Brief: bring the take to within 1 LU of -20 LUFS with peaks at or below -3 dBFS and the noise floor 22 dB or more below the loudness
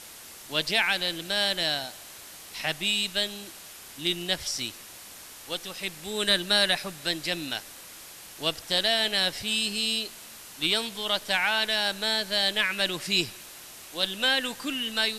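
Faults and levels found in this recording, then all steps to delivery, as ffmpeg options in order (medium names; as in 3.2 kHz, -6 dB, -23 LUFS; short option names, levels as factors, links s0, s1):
noise floor -46 dBFS; noise floor target -48 dBFS; loudness -26.0 LUFS; peak level -10.0 dBFS; loudness target -20.0 LUFS
-> -af "afftdn=nr=6:nf=-46"
-af "volume=2"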